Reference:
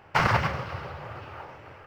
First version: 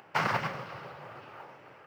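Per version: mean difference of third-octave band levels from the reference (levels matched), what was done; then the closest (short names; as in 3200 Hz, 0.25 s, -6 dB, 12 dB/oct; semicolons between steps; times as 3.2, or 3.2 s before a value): 2.0 dB: HPF 140 Hz 24 dB/oct; upward compressor, threshold -45 dBFS; modulation noise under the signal 35 dB; gain -5.5 dB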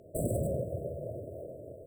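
17.5 dB: low shelf 190 Hz -10 dB; overloaded stage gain 28 dB; brick-wall FIR band-stop 690–7600 Hz; gain +6.5 dB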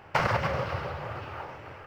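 3.5 dB: dynamic EQ 550 Hz, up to +7 dB, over -44 dBFS, Q 2.5; compressor 6:1, threshold -25 dBFS, peak gain reduction 9 dB; gain +2.5 dB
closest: first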